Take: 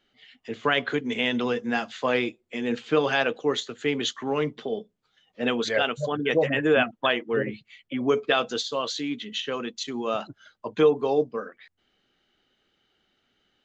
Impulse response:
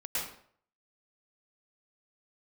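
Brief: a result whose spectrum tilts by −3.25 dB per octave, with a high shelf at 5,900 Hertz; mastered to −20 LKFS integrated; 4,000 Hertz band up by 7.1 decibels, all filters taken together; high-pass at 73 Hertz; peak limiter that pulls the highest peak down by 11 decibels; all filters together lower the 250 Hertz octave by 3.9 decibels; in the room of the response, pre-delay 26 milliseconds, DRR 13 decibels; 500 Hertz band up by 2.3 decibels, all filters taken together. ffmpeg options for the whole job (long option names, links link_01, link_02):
-filter_complex "[0:a]highpass=73,equalizer=frequency=250:width_type=o:gain=-6,equalizer=frequency=500:width_type=o:gain=4,equalizer=frequency=4000:width_type=o:gain=7.5,highshelf=frequency=5900:gain=5,alimiter=limit=-17dB:level=0:latency=1,asplit=2[link_01][link_02];[1:a]atrim=start_sample=2205,adelay=26[link_03];[link_02][link_03]afir=irnorm=-1:irlink=0,volume=-18dB[link_04];[link_01][link_04]amix=inputs=2:normalize=0,volume=8dB"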